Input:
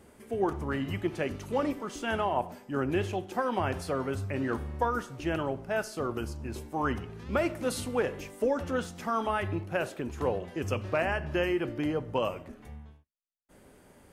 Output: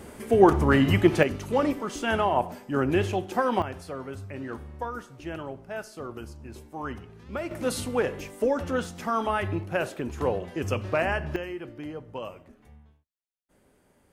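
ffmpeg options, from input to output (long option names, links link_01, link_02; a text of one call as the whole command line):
ffmpeg -i in.wav -af "asetnsamples=nb_out_samples=441:pad=0,asendcmd='1.23 volume volume 5dB;3.62 volume volume -5dB;7.51 volume volume 3dB;11.36 volume volume -7dB',volume=12dB" out.wav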